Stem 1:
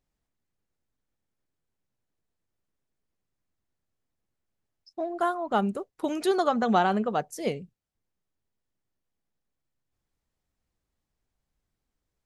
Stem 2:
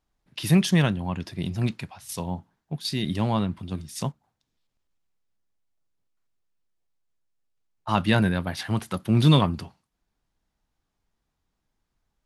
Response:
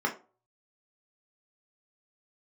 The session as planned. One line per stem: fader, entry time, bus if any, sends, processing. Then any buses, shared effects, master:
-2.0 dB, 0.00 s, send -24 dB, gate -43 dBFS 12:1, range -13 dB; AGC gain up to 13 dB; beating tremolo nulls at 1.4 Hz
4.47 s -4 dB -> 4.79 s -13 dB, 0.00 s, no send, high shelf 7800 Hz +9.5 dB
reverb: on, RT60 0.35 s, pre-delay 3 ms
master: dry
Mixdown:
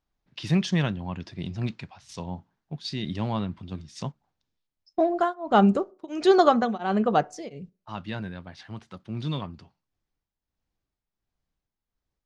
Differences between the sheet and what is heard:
stem 2: missing high shelf 7800 Hz +9.5 dB; master: extra LPF 6500 Hz 24 dB/oct

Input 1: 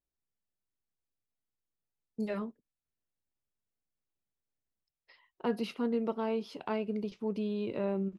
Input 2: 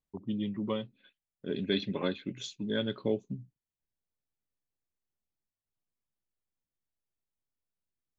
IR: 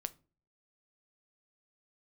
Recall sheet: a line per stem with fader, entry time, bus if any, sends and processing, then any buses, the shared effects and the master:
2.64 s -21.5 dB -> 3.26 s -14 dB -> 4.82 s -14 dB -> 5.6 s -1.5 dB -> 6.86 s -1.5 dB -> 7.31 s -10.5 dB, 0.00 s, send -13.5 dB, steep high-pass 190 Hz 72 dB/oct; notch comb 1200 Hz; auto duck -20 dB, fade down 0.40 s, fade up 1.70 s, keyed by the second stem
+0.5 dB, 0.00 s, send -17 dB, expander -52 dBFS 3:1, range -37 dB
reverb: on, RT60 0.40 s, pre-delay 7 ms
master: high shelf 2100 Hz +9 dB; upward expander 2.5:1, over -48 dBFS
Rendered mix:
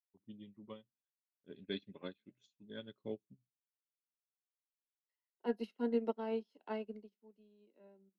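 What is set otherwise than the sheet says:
stem 2 +0.5 dB -> -6.5 dB; master: missing high shelf 2100 Hz +9 dB

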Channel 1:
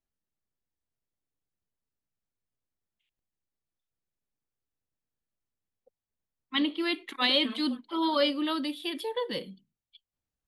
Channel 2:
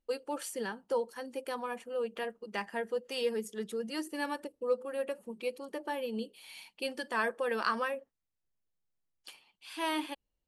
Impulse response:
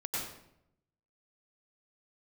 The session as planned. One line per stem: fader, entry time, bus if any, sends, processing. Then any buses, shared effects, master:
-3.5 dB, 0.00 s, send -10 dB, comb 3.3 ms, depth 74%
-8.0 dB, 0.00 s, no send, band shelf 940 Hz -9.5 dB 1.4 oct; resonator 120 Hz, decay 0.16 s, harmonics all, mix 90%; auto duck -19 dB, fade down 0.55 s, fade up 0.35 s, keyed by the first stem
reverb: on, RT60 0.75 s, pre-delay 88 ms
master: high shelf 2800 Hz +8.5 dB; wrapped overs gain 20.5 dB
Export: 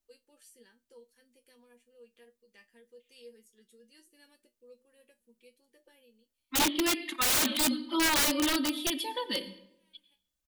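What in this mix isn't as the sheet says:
stem 1: send -10 dB -> -17.5 dB; stem 2 -8.0 dB -> -16.5 dB

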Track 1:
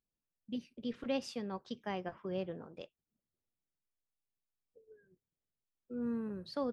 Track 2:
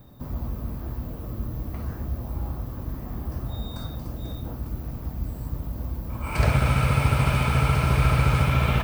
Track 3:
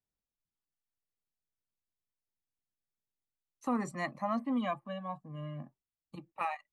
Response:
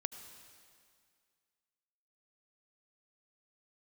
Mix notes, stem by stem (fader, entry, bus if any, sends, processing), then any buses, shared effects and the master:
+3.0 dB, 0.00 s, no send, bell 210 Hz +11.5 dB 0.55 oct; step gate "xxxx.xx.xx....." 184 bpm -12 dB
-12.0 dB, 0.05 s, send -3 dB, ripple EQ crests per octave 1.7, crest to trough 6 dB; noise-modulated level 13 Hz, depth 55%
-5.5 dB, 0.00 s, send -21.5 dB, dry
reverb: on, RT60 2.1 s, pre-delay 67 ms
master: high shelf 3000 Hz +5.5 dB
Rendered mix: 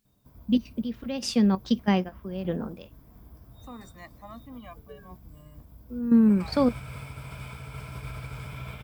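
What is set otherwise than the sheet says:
stem 1 +3.0 dB -> +11.5 dB; stem 2 -12.0 dB -> -21.0 dB; stem 3 -5.5 dB -> -12.5 dB

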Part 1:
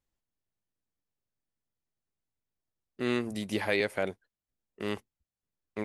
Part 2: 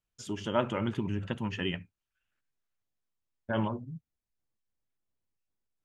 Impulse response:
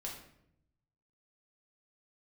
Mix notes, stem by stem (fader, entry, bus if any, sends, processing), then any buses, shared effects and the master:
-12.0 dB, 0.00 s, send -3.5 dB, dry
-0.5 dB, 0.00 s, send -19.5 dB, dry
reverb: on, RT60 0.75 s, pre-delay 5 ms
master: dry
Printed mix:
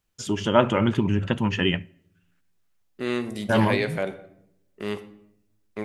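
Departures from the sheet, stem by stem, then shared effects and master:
stem 1 -12.0 dB -> -0.5 dB; stem 2 -0.5 dB -> +9.5 dB

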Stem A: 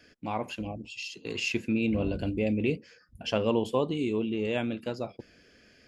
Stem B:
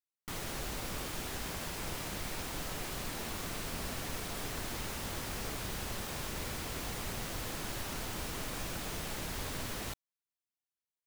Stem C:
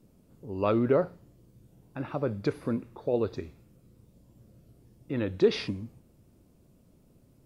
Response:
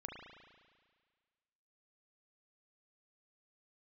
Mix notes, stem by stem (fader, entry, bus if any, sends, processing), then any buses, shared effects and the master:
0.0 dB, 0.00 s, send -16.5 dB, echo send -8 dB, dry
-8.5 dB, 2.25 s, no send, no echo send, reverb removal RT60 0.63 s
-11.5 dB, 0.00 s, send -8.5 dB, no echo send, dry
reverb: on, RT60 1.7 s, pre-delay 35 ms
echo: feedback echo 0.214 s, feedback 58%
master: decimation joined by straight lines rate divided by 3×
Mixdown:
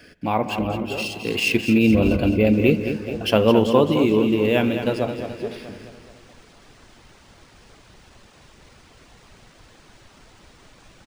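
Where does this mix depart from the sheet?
stem A 0.0 dB -> +9.0 dB; reverb return +7.0 dB

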